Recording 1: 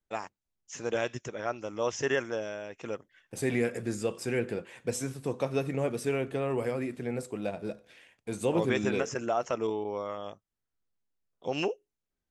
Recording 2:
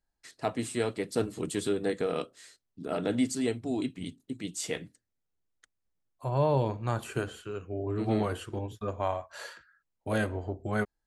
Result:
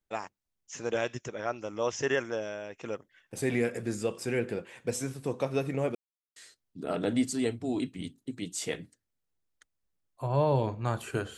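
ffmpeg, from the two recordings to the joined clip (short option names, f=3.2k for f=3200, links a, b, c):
-filter_complex "[0:a]apad=whole_dur=11.37,atrim=end=11.37,asplit=2[a][b];[a]atrim=end=5.95,asetpts=PTS-STARTPTS,afade=t=out:st=5.946:d=0.004:c=hsin[c];[b]atrim=start=5.95:end=6.36,asetpts=PTS-STARTPTS,volume=0[d];[1:a]atrim=start=2.38:end=7.39,asetpts=PTS-STARTPTS,afade=t=in:d=0.004:c=hsin[e];[c][d][e]concat=n=3:v=0:a=1"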